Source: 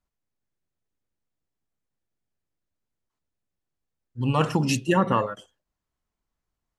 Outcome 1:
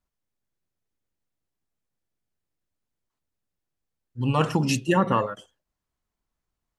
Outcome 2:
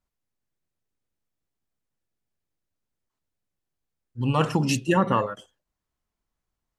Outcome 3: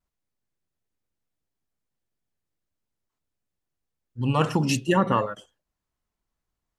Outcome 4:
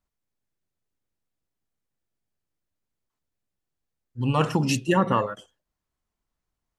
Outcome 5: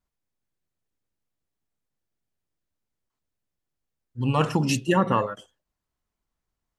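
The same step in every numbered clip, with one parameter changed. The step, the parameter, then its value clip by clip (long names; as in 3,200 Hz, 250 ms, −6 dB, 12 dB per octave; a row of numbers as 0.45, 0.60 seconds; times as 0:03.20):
pitch vibrato, speed: 12, 2.8, 0.46, 4.9, 1.3 Hertz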